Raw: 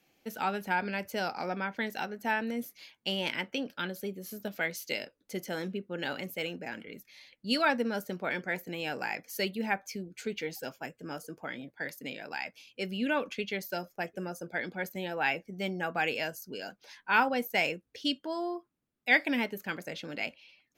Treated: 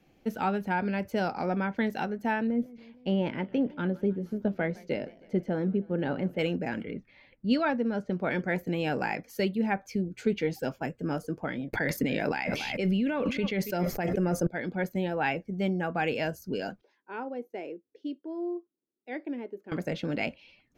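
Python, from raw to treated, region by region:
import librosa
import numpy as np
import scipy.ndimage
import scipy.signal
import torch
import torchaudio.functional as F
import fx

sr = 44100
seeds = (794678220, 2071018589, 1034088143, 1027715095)

y = fx.chain(x, sr, fx.lowpass(hz=1000.0, slope=6),
    fx.echo_warbled(ms=156, feedback_pct=62, rate_hz=2.8, cents=153, wet_db=-22.5), at=(2.47, 6.39))
y = fx.chain(y, sr, fx.env_lowpass(base_hz=2100.0, full_db=-27.0),
    fx.air_absorb(metres=74.0), at=(6.91, 8.19))
y = fx.chain(y, sr, fx.peak_eq(hz=2100.0, db=5.0, octaves=0.23),
    fx.echo_feedback(ms=278, feedback_pct=15, wet_db=-24),
    fx.env_flatten(amount_pct=100), at=(11.73, 14.47))
y = fx.chain(y, sr, fx.bandpass_q(hz=360.0, q=3.5),
    fx.tilt_eq(slope=4.0), at=(16.81, 19.72))
y = fx.tilt_eq(y, sr, slope=-3.0)
y = fx.rider(y, sr, range_db=5, speed_s=0.5)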